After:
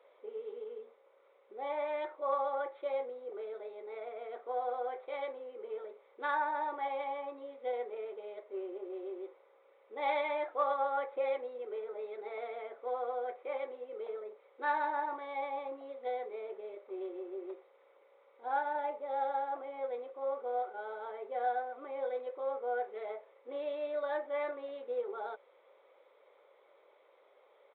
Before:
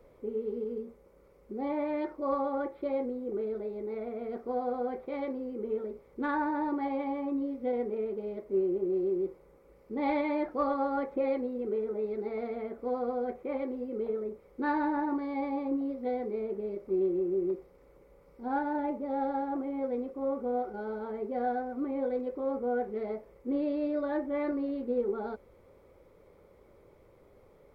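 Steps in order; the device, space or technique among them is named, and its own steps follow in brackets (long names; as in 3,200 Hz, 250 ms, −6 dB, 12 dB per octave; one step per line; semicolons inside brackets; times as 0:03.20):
musical greeting card (downsampling to 8,000 Hz; high-pass filter 540 Hz 24 dB per octave; parametric band 3,900 Hz +9 dB 0.55 octaves)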